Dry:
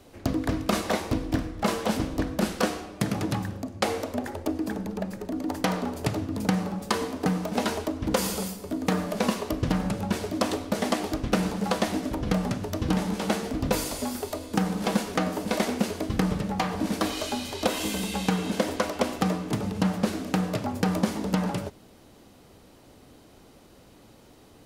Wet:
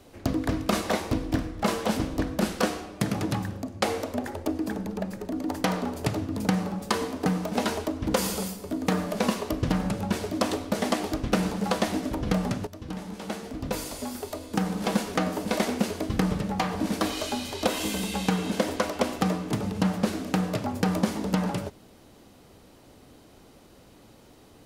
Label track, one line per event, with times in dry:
12.670000	15.070000	fade in, from -13.5 dB

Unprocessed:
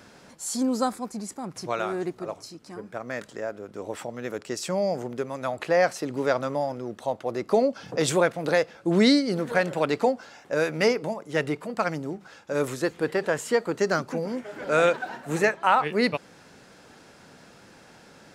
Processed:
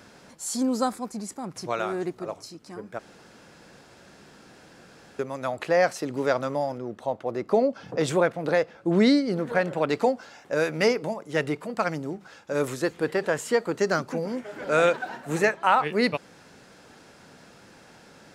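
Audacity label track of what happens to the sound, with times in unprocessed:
2.990000	5.190000	room tone
6.780000	9.900000	treble shelf 3.3 kHz -8.5 dB

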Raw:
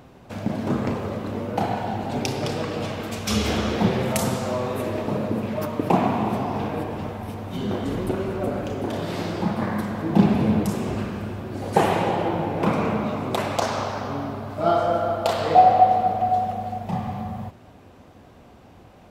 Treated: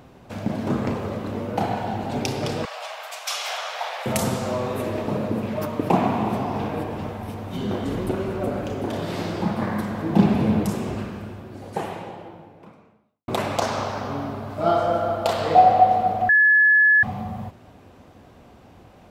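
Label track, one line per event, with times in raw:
2.650000	4.060000	steep high-pass 620 Hz 48 dB/octave
10.680000	13.280000	fade out quadratic
16.290000	17.030000	bleep 1.71 kHz -12 dBFS

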